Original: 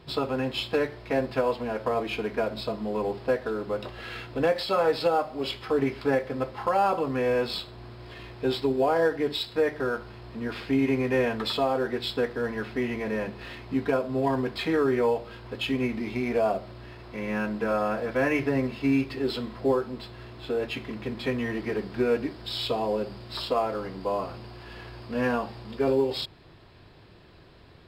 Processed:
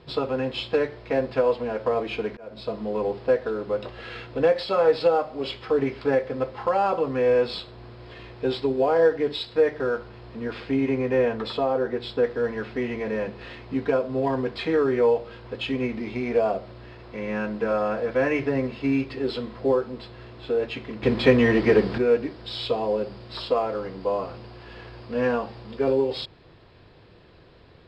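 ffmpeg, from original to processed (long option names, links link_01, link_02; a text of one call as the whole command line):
ffmpeg -i in.wav -filter_complex "[0:a]asplit=3[link_01][link_02][link_03];[link_01]afade=type=out:start_time=10.07:duration=0.02[link_04];[link_02]adynamicequalizer=threshold=0.00891:dfrequency=1700:dqfactor=0.7:tfrequency=1700:tqfactor=0.7:attack=5:release=100:ratio=0.375:range=2.5:mode=cutabove:tftype=highshelf,afade=type=in:start_time=10.07:duration=0.02,afade=type=out:start_time=12.23:duration=0.02[link_05];[link_03]afade=type=in:start_time=12.23:duration=0.02[link_06];[link_04][link_05][link_06]amix=inputs=3:normalize=0,asplit=4[link_07][link_08][link_09][link_10];[link_07]atrim=end=2.37,asetpts=PTS-STARTPTS,afade=type=out:start_time=2.366:duration=0.004:curve=hsin[link_11];[link_08]atrim=start=2.37:end=21.032,asetpts=PTS-STARTPTS,afade=type=in:duration=0.4[link_12];[link_09]atrim=start=21.028:end=21.982,asetpts=PTS-STARTPTS,volume=10dB[link_13];[link_10]atrim=start=21.978[link_14];[link_11][link_12]concat=n=2:v=0:a=1[link_15];[link_15][link_13]acrossfade=duration=0.004:curve1=hsin:curve2=hsin[link_16];[link_16][link_14]acrossfade=duration=0.004:curve1=hsin:curve2=hsin,lowpass=5600,equalizer=frequency=490:width_type=o:width=0.3:gain=6" out.wav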